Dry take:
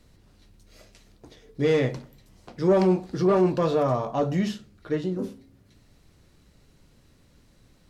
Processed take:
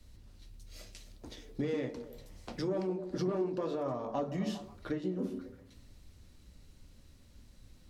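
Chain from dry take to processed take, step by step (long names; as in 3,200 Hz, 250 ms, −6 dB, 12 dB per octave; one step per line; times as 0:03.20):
dynamic equaliser 360 Hz, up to +4 dB, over −30 dBFS, Q 2.4
downward compressor 16 to 1, threshold −35 dBFS, peak gain reduction 23 dB
echo through a band-pass that steps 135 ms, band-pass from 280 Hz, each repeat 0.7 octaves, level −6.5 dB
on a send at −14.5 dB: convolution reverb, pre-delay 3 ms
on the sum: multiband upward and downward expander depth 40%
level +3 dB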